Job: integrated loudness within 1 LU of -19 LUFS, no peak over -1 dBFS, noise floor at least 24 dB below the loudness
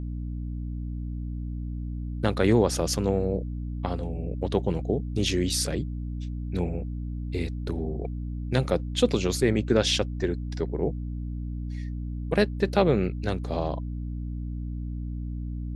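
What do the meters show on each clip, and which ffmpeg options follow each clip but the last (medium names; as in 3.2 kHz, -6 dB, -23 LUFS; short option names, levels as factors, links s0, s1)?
hum 60 Hz; highest harmonic 300 Hz; hum level -30 dBFS; loudness -28.5 LUFS; peak level -7.5 dBFS; loudness target -19.0 LUFS
-> -af "bandreject=f=60:t=h:w=6,bandreject=f=120:t=h:w=6,bandreject=f=180:t=h:w=6,bandreject=f=240:t=h:w=6,bandreject=f=300:t=h:w=6"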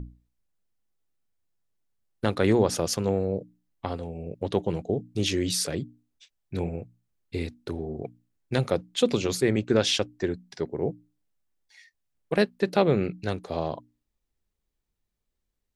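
hum not found; loudness -27.5 LUFS; peak level -8.0 dBFS; loudness target -19.0 LUFS
-> -af "volume=2.66,alimiter=limit=0.891:level=0:latency=1"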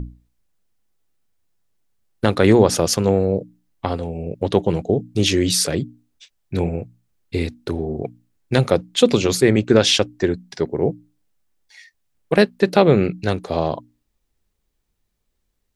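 loudness -19.5 LUFS; peak level -1.0 dBFS; noise floor -72 dBFS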